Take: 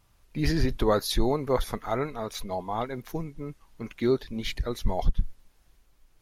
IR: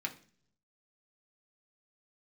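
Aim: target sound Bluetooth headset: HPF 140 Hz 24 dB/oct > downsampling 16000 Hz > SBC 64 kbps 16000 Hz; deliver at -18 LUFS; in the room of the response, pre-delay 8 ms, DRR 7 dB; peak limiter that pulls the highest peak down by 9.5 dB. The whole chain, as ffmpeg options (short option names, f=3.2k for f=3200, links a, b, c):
-filter_complex "[0:a]alimiter=limit=-21dB:level=0:latency=1,asplit=2[a][b];[1:a]atrim=start_sample=2205,adelay=8[c];[b][c]afir=irnorm=-1:irlink=0,volume=-9dB[d];[a][d]amix=inputs=2:normalize=0,highpass=f=140:w=0.5412,highpass=f=140:w=1.3066,aresample=16000,aresample=44100,volume=15.5dB" -ar 16000 -c:a sbc -b:a 64k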